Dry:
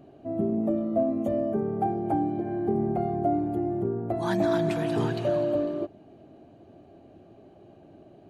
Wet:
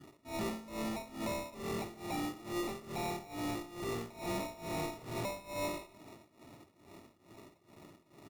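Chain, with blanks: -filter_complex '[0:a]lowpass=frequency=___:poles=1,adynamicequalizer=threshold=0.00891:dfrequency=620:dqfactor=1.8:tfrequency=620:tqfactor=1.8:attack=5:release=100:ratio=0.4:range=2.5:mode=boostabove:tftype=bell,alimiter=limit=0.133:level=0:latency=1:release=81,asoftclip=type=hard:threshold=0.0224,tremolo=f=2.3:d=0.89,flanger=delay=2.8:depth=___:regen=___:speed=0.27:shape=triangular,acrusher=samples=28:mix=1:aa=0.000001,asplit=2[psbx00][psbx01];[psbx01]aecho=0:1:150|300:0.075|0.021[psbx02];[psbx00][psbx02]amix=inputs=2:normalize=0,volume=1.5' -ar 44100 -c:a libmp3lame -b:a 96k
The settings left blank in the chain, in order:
1k, 9.4, 87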